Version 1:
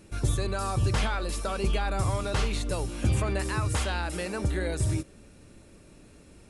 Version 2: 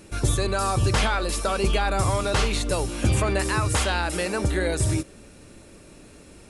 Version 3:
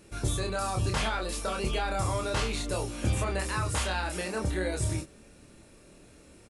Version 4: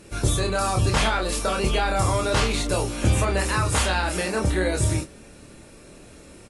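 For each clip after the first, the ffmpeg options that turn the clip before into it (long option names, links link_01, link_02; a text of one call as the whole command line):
ffmpeg -i in.wav -af "bass=frequency=250:gain=-4,treble=frequency=4000:gain=1,volume=7dB" out.wav
ffmpeg -i in.wav -filter_complex "[0:a]asplit=2[link_01][link_02];[link_02]adelay=27,volume=-4dB[link_03];[link_01][link_03]amix=inputs=2:normalize=0,volume=-8dB" out.wav
ffmpeg -i in.wav -af "volume=7.5dB" -ar 32000 -c:a aac -b:a 48k out.aac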